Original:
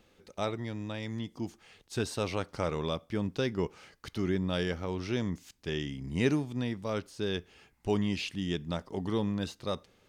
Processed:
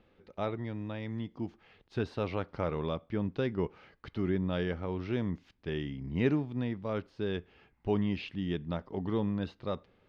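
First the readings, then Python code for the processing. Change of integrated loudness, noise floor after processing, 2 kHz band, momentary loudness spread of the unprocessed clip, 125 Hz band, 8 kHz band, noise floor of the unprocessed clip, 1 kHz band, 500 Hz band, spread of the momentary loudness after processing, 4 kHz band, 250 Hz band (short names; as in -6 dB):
-1.0 dB, -70 dBFS, -3.0 dB, 8 LU, 0.0 dB, under -20 dB, -67 dBFS, -1.5 dB, -1.0 dB, 8 LU, -7.5 dB, -0.5 dB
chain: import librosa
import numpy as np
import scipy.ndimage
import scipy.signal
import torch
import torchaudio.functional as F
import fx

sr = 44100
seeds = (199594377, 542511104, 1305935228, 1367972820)

y = fx.air_absorb(x, sr, metres=320.0)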